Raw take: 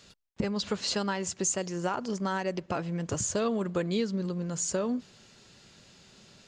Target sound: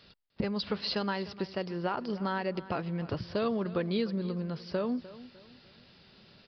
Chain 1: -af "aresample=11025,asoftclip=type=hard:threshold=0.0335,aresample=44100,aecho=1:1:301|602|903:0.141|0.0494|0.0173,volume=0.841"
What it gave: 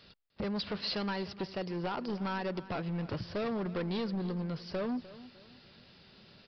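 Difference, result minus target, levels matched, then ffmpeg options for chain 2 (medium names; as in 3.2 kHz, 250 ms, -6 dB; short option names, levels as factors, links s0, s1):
hard clipper: distortion +33 dB
-af "aresample=11025,asoftclip=type=hard:threshold=0.119,aresample=44100,aecho=1:1:301|602|903:0.141|0.0494|0.0173,volume=0.841"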